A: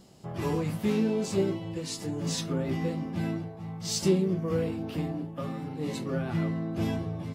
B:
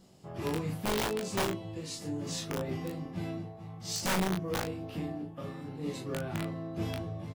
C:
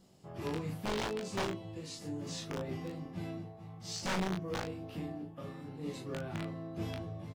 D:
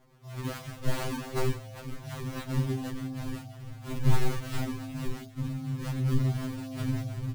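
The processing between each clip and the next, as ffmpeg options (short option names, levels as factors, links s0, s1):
-filter_complex "[0:a]aeval=exprs='(mod(9.44*val(0)+1,2)-1)/9.44':c=same,asplit=2[s0][s1];[s1]aecho=0:1:21|38:0.596|0.473[s2];[s0][s2]amix=inputs=2:normalize=0,volume=0.501"
-filter_complex "[0:a]acrossover=split=7400[s0][s1];[s1]acompressor=threshold=0.00224:ratio=4:attack=1:release=60[s2];[s0][s2]amix=inputs=2:normalize=0,volume=0.631"
-af "acrusher=samples=37:mix=1:aa=0.000001:lfo=1:lforange=59.2:lforate=2.8,asubboost=boost=6:cutoff=200,afftfilt=real='re*2.45*eq(mod(b,6),0)':imag='im*2.45*eq(mod(b,6),0)':win_size=2048:overlap=0.75,volume=1.78"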